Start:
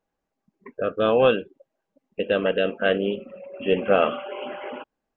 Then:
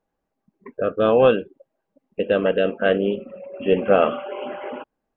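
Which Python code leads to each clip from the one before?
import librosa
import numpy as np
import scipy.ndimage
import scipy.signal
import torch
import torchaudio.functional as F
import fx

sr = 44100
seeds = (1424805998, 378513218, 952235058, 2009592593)

y = fx.high_shelf(x, sr, hz=2200.0, db=-8.5)
y = y * 10.0 ** (3.5 / 20.0)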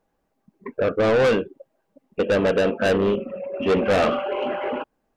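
y = 10.0 ** (-21.0 / 20.0) * np.tanh(x / 10.0 ** (-21.0 / 20.0))
y = y * 10.0 ** (6.0 / 20.0)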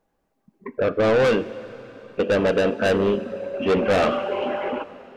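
y = fx.rev_plate(x, sr, seeds[0], rt60_s=4.8, hf_ratio=0.85, predelay_ms=0, drr_db=15.0)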